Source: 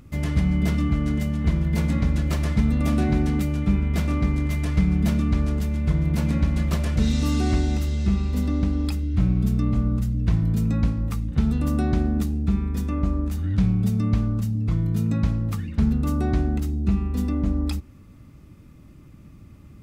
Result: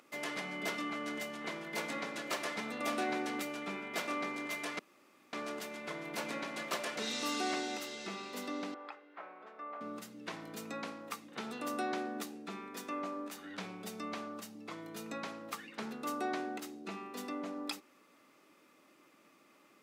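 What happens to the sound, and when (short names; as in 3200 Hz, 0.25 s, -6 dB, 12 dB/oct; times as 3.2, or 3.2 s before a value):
4.79–5.33 room tone
8.74–9.81 Butterworth band-pass 990 Hz, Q 0.81
whole clip: Bessel high-pass 570 Hz, order 4; high shelf 7100 Hz -5 dB; gain -1 dB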